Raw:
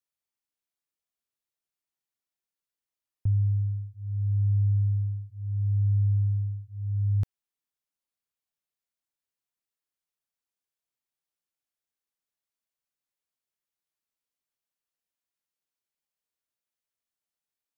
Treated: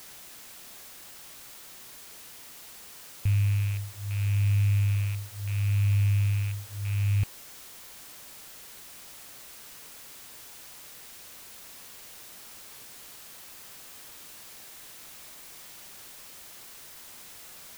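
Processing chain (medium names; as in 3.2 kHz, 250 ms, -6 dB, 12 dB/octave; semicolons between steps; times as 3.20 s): rattle on loud lows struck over -28 dBFS, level -31 dBFS; added noise white -47 dBFS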